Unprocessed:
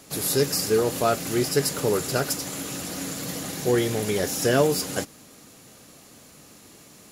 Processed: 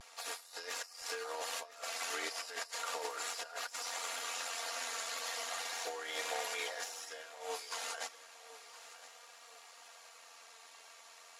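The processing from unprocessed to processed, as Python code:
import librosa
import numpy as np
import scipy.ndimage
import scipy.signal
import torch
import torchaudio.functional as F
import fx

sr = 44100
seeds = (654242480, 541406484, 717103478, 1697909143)

y = scipy.signal.sosfilt(scipy.signal.butter(4, 730.0, 'highpass', fs=sr, output='sos'), x)
y = fx.high_shelf(y, sr, hz=2000.0, db=-3.5)
y = fx.over_compress(y, sr, threshold_db=-36.0, ratio=-0.5)
y = fx.stretch_grains(y, sr, factor=1.6, grain_ms=23.0)
y = fx.vibrato(y, sr, rate_hz=0.35, depth_cents=25.0)
y = fx.air_absorb(y, sr, metres=58.0)
y = fx.echo_feedback(y, sr, ms=1014, feedback_pct=38, wet_db=-16)
y = y * librosa.db_to_amplitude(-1.5)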